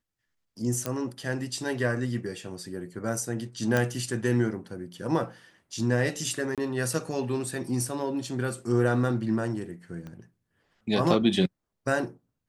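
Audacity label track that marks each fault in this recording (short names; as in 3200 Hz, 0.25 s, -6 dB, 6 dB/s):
0.860000	0.860000	pop -13 dBFS
3.770000	3.770000	pop -12 dBFS
6.550000	6.580000	gap 27 ms
10.070000	10.070000	pop -29 dBFS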